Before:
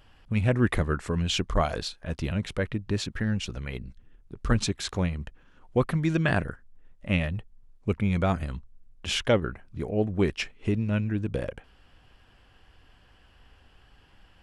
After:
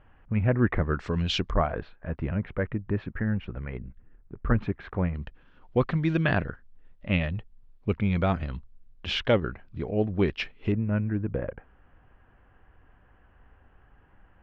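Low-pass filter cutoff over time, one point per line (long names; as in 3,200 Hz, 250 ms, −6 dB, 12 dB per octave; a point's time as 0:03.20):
low-pass filter 24 dB per octave
2,100 Hz
from 0:00.94 5,100 Hz
from 0:01.50 2,000 Hz
from 0:05.15 4,300 Hz
from 0:10.72 1,900 Hz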